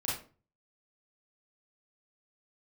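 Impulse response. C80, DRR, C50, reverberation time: 9.0 dB, -7.0 dB, 2.5 dB, 0.40 s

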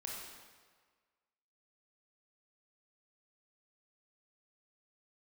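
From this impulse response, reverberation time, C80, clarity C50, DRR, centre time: 1.6 s, 2.0 dB, -0.5 dB, -3.0 dB, 85 ms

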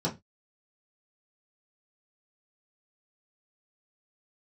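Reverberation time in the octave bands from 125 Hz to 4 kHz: 0.30, 0.25, 0.20, 0.20, 0.20, 0.20 s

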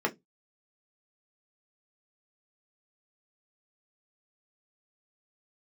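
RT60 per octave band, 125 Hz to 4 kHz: 0.30, 0.20, 0.20, 0.15, 0.15, 0.15 s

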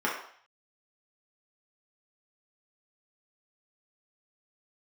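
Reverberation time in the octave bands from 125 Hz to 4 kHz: 0.35, 0.45, 0.55, 0.60, 0.60, 0.60 s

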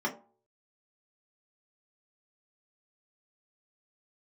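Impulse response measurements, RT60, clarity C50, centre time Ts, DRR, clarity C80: 0.45 s, 13.0 dB, 13 ms, -3.5 dB, 17.0 dB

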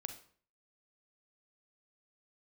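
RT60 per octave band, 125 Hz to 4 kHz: 0.55, 0.55, 0.50, 0.50, 0.45, 0.40 s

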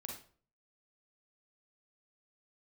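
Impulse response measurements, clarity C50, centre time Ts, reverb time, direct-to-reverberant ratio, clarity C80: 3.5 dB, 33 ms, 0.45 s, -0.5 dB, 10.0 dB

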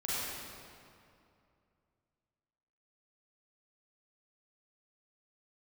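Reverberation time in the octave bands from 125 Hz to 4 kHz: 3.1, 2.8, 2.6, 2.5, 2.1, 1.7 s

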